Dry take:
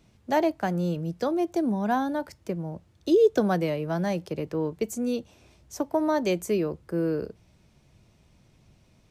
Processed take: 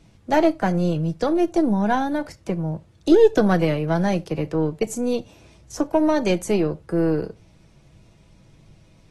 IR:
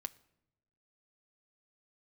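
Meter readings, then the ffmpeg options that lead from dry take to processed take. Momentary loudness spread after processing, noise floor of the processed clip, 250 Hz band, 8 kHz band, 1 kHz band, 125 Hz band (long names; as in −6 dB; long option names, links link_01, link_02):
11 LU, −54 dBFS, +6.5 dB, +5.0 dB, +4.5 dB, +7.5 dB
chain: -filter_complex "[0:a]lowshelf=frequency=97:gain=6,aeval=exprs='0.299*(cos(1*acos(clip(val(0)/0.299,-1,1)))-cos(1*PI/2))+0.0237*(cos(2*acos(clip(val(0)/0.299,-1,1)))-cos(2*PI/2))+0.00944*(cos(6*acos(clip(val(0)/0.299,-1,1)))-cos(6*PI/2))':channel_layout=same[link_01];[1:a]atrim=start_sample=2205,afade=type=out:start_time=0.14:duration=0.01,atrim=end_sample=6615[link_02];[link_01][link_02]afir=irnorm=-1:irlink=0,volume=7.5dB" -ar 32000 -c:a aac -b:a 32k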